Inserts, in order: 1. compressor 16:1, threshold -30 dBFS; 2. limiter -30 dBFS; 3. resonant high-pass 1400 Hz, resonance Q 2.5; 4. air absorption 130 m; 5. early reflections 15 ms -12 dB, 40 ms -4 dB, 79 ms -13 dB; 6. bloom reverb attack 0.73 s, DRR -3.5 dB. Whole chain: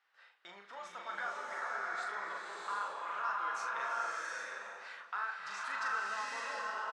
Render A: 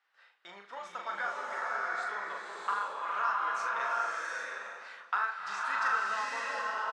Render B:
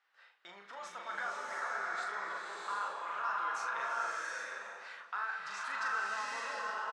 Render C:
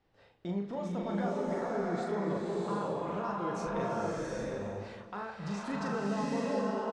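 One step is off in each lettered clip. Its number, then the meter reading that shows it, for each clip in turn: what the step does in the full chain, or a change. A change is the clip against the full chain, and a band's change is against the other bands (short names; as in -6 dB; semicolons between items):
2, mean gain reduction 2.0 dB; 1, mean gain reduction 6.5 dB; 3, 250 Hz band +30.0 dB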